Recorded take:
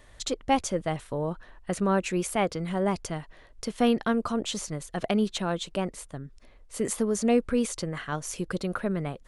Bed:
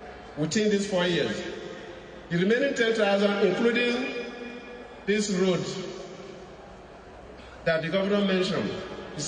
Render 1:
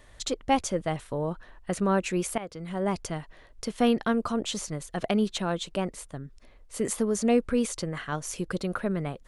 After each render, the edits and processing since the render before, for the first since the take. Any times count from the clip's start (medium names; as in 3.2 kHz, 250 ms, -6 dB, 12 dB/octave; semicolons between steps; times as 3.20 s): 2.38–2.98 s: fade in, from -16.5 dB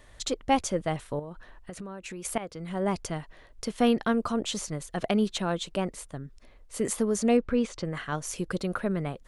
1.19–2.25 s: compression 16:1, threshold -35 dBFS; 7.37–7.85 s: distance through air 120 m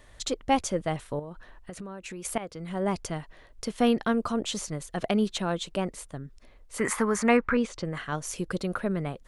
6.78–7.57 s: high-order bell 1.4 kHz +14 dB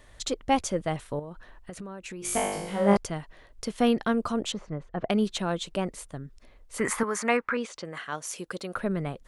2.20–2.97 s: flutter echo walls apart 3.4 m, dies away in 0.97 s; 4.52–5.10 s: low-pass 1.5 kHz; 7.03–8.76 s: high-pass 510 Hz 6 dB/octave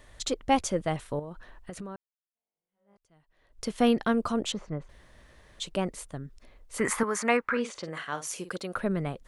1.96–3.65 s: fade in exponential; 4.89–5.60 s: room tone; 7.48–8.56 s: doubling 50 ms -11 dB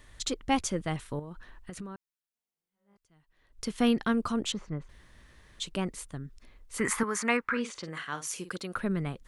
peaking EQ 610 Hz -8 dB 0.93 oct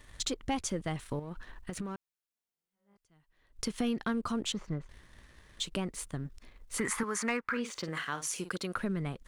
waveshaping leveller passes 1; compression 2.5:1, threshold -33 dBFS, peak gain reduction 10 dB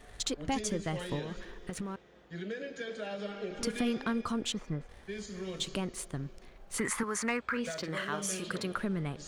add bed -16 dB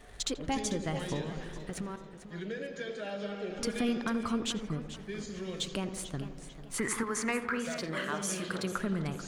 filtered feedback delay 84 ms, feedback 69%, low-pass 1.5 kHz, level -10 dB; modulated delay 442 ms, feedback 35%, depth 106 cents, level -13 dB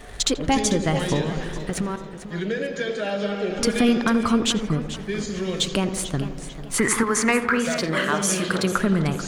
trim +12 dB